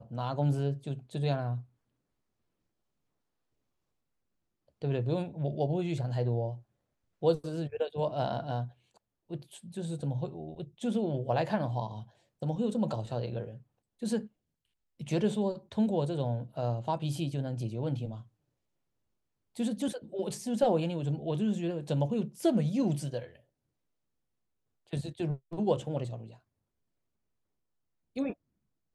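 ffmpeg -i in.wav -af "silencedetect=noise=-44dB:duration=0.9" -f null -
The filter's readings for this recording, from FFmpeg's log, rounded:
silence_start: 1.62
silence_end: 4.82 | silence_duration: 3.19
silence_start: 18.22
silence_end: 19.55 | silence_duration: 1.34
silence_start: 23.36
silence_end: 24.93 | silence_duration: 1.57
silence_start: 26.32
silence_end: 28.16 | silence_duration: 1.84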